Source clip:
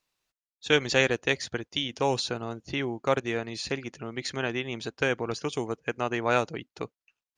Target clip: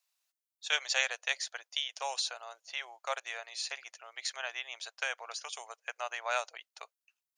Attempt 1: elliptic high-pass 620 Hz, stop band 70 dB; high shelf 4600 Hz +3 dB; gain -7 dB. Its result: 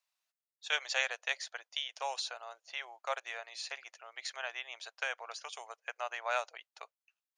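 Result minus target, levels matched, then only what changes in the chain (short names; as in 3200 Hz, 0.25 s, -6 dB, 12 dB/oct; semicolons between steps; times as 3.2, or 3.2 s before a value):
8000 Hz band -4.0 dB
change: high shelf 4600 Hz +12.5 dB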